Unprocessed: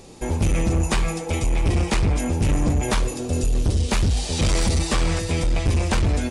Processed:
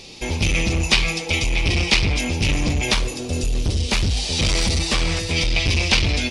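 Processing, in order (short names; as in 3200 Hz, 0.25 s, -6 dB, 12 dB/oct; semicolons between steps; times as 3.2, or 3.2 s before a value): band shelf 3500 Hz +14.5 dB, from 2.92 s +8 dB, from 5.35 s +15 dB; gain -1 dB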